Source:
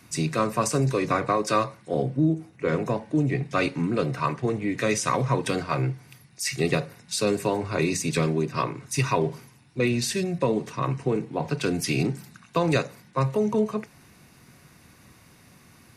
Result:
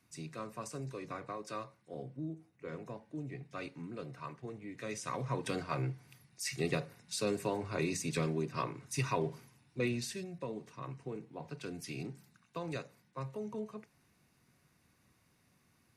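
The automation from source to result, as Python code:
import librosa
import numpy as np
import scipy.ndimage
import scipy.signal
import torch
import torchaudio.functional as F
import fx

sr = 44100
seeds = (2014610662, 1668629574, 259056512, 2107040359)

y = fx.gain(x, sr, db=fx.line((4.71, -19.0), (5.54, -10.0), (9.87, -10.0), (10.3, -17.5)))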